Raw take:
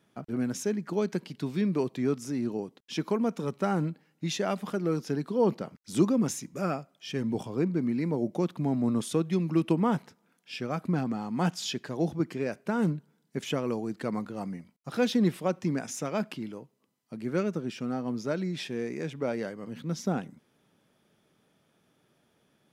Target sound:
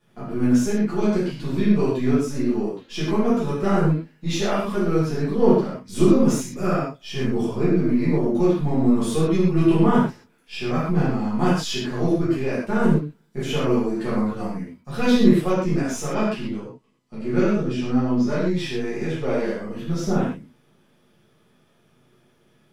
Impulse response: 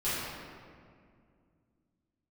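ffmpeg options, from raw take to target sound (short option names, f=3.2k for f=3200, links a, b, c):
-filter_complex "[0:a]aeval=exprs='if(lt(val(0),0),0.708*val(0),val(0))':c=same,asettb=1/sr,asplit=3[a][b][c];[a]atrim=end=16.134[d];[b]atrim=start=16.13:end=18.26,asetpts=PTS-STARTPTS,afade=t=in:d=0.004:c=qsin,afade=t=out:st=2.126:d=0.004:c=qsin,lowpass=8.6k[e];[c]atrim=start=18.256[f];[d][e]acrossfade=d=0.004:c1=hsin:c2=qsin[g];[g][f]acrossfade=d=0.004:c1=qsin:c2=hsin[h];[1:a]atrim=start_sample=2205,atrim=end_sample=6615[i];[h][i]afir=irnorm=-1:irlink=0,volume=1.5dB"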